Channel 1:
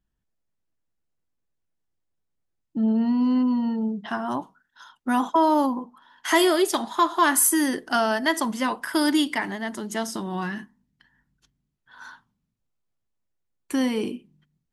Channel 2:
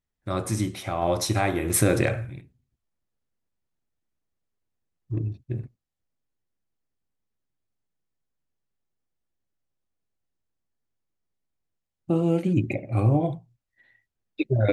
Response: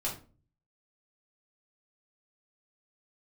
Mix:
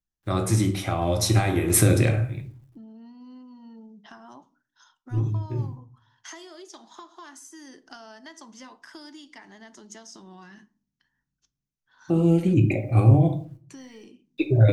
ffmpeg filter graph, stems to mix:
-filter_complex "[0:a]acompressor=threshold=-31dB:ratio=5,lowpass=frequency=6100:width_type=q:width=3.7,volume=-13.5dB,asplit=3[link_01][link_02][link_03];[link_02]volume=-16dB[link_04];[1:a]acrusher=bits=11:mix=0:aa=0.000001,volume=0.5dB,asplit=2[link_05][link_06];[link_06]volume=-6dB[link_07];[link_03]apad=whole_len=649412[link_08];[link_05][link_08]sidechaincompress=threshold=-57dB:ratio=8:attack=16:release=280[link_09];[2:a]atrim=start_sample=2205[link_10];[link_04][link_07]amix=inputs=2:normalize=0[link_11];[link_11][link_10]afir=irnorm=-1:irlink=0[link_12];[link_01][link_09][link_12]amix=inputs=3:normalize=0,acrossover=split=290|3000[link_13][link_14][link_15];[link_14]acompressor=threshold=-25dB:ratio=6[link_16];[link_13][link_16][link_15]amix=inputs=3:normalize=0"

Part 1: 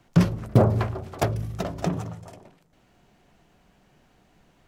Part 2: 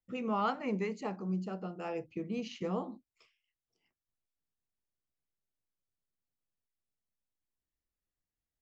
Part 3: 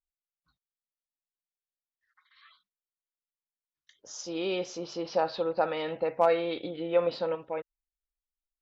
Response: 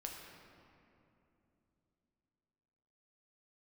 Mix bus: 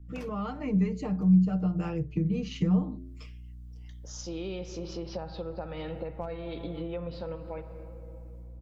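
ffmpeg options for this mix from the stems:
-filter_complex "[0:a]highpass=660,agate=range=-33dB:threshold=-58dB:ratio=3:detection=peak,volume=-14.5dB[link_01];[1:a]aecho=1:1:6.6:0.98,dynaudnorm=framelen=300:gausssize=3:maxgain=13dB,bandreject=frequency=87.73:width_type=h:width=4,bandreject=frequency=175.46:width_type=h:width=4,bandreject=frequency=263.19:width_type=h:width=4,bandreject=frequency=350.92:width_type=h:width=4,bandreject=frequency=438.65:width_type=h:width=4,bandreject=frequency=526.38:width_type=h:width=4,bandreject=frequency=614.11:width_type=h:width=4,volume=-3.5dB,asplit=2[link_02][link_03];[2:a]aeval=exprs='val(0)+0.002*(sin(2*PI*60*n/s)+sin(2*PI*2*60*n/s)/2+sin(2*PI*3*60*n/s)/3+sin(2*PI*4*60*n/s)/4+sin(2*PI*5*60*n/s)/5)':channel_layout=same,volume=-3.5dB,asplit=2[link_04][link_05];[link_05]volume=-6dB[link_06];[link_03]apad=whole_len=206125[link_07];[link_01][link_07]sidechaincompress=threshold=-37dB:ratio=10:attack=41:release=1410[link_08];[3:a]atrim=start_sample=2205[link_09];[link_06][link_09]afir=irnorm=-1:irlink=0[link_10];[link_08][link_02][link_04][link_10]amix=inputs=4:normalize=0,lowshelf=frequency=200:gain=12,acrossover=split=190[link_11][link_12];[link_12]acompressor=threshold=-35dB:ratio=10[link_13];[link_11][link_13]amix=inputs=2:normalize=0"

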